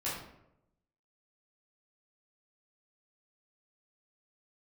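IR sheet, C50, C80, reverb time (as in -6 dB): 2.0 dB, 5.5 dB, 0.85 s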